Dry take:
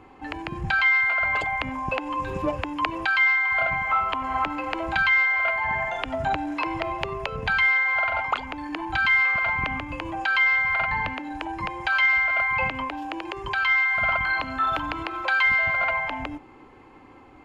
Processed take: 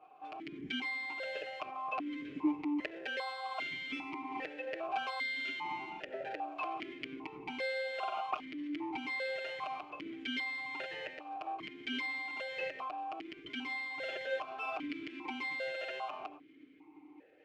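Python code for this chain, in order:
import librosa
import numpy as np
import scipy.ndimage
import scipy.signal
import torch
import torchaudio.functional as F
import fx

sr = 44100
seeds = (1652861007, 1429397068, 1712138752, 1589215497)

y = fx.lower_of_two(x, sr, delay_ms=6.5)
y = fx.peak_eq(y, sr, hz=390.0, db=11.0, octaves=0.23)
y = fx.vowel_held(y, sr, hz=2.5)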